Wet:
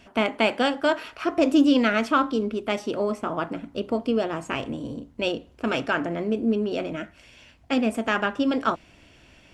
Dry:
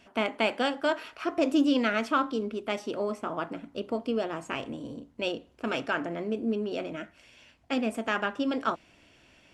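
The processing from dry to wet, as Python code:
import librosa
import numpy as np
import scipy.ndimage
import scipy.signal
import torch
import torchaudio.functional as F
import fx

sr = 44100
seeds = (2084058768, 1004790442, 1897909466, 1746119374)

y = fx.low_shelf(x, sr, hz=120.0, db=8.5)
y = F.gain(torch.from_numpy(y), 4.5).numpy()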